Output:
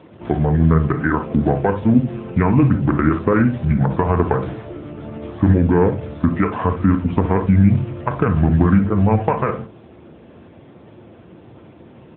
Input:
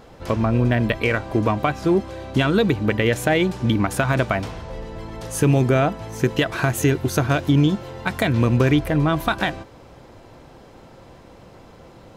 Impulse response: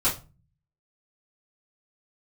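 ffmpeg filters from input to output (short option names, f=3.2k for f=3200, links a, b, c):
-filter_complex "[0:a]acrossover=split=3000[a][b];[b]acompressor=threshold=-45dB:ratio=4:attack=1:release=60[c];[a][c]amix=inputs=2:normalize=0,asetrate=29433,aresample=44100,atempo=1.49831,asplit=2[d][e];[1:a]atrim=start_sample=2205,adelay=32[f];[e][f]afir=irnorm=-1:irlink=0,volume=-19.5dB[g];[d][g]amix=inputs=2:normalize=0,volume=3.5dB" -ar 8000 -c:a libopencore_amrnb -b:a 10200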